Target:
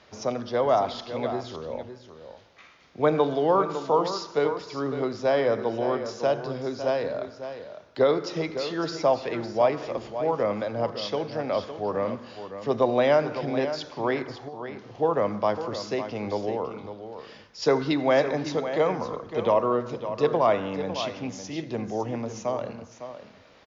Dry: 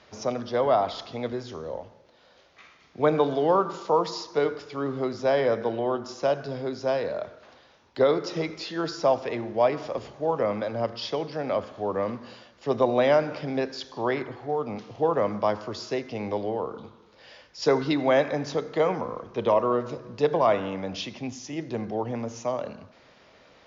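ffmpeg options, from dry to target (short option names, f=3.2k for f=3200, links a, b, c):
-filter_complex "[0:a]asettb=1/sr,asplit=3[a][b][c];[a]atrim=end=14.484[d];[b]atrim=start=14.48:end=14.95,asetpts=PTS-STARTPTS,afade=t=in:d=0.004:c=qsin,afade=t=out:st=0.466:d=0.004:c=qsin,acompressor=threshold=-40dB:ratio=6[e];[c]atrim=start=14.946[f];[d][e]acrossfade=d=0.004:c1=hsin:c2=qsin[g];[g][f]acrossfade=d=0.004:c1=qsin:c2=hsin,aecho=1:1:556:0.299"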